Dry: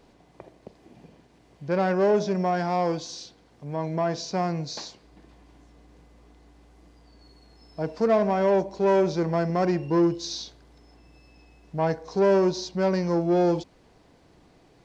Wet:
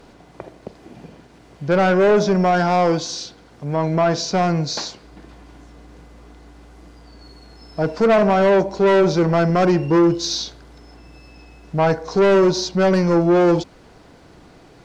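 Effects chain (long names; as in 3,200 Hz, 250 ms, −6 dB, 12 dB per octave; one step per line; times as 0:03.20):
parametric band 1,400 Hz +6 dB 0.27 octaves
in parallel at −4 dB: sine wavefolder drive 7 dB, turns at −11.5 dBFS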